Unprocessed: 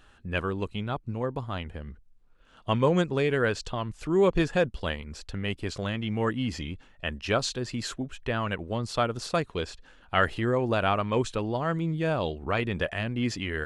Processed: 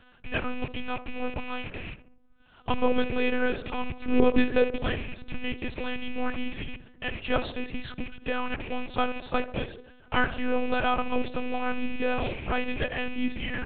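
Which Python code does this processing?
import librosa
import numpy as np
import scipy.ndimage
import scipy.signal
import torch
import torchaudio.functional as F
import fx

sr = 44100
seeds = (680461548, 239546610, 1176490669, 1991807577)

y = fx.rattle_buzz(x, sr, strikes_db=-41.0, level_db=-26.0)
y = fx.low_shelf(y, sr, hz=270.0, db=6.0, at=(3.78, 5.38))
y = fx.echo_tape(y, sr, ms=72, feedback_pct=70, wet_db=-11, lp_hz=1100.0, drive_db=7.0, wow_cents=38)
y = fx.lpc_monotone(y, sr, seeds[0], pitch_hz=250.0, order=8)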